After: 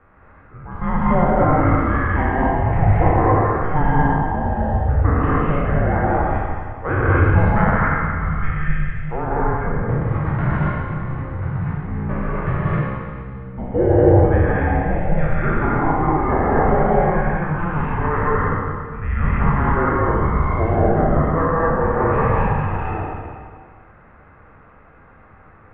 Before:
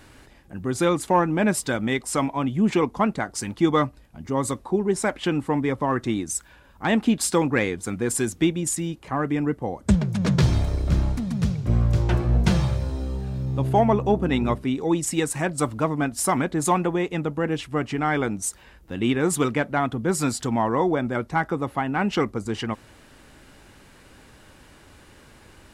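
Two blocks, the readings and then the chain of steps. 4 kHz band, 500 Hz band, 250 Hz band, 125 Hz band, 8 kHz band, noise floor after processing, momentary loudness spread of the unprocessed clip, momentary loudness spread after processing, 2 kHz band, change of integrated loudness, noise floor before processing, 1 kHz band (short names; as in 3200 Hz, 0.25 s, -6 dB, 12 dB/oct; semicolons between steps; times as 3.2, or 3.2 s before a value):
under -15 dB, +5.0 dB, +1.5 dB, +7.0 dB, under -40 dB, -47 dBFS, 8 LU, 10 LU, +5.5 dB, +4.5 dB, -51 dBFS, +7.0 dB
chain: spectral trails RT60 2.03 s; mistuned SSB -320 Hz 180–2200 Hz; non-linear reverb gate 0.28 s rising, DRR -5 dB; gain -2.5 dB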